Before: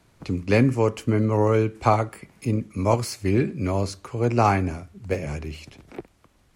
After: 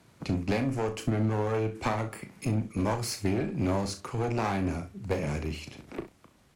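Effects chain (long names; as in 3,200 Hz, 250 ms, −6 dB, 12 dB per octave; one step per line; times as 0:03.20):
downward compressor 10 to 1, threshold −22 dBFS, peak gain reduction 10 dB
high-pass filter 100 Hz 6 dB per octave
parametric band 170 Hz +3 dB 1.8 octaves
asymmetric clip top −30 dBFS
on a send: ambience of single reflections 36 ms −9 dB, 66 ms −16 dB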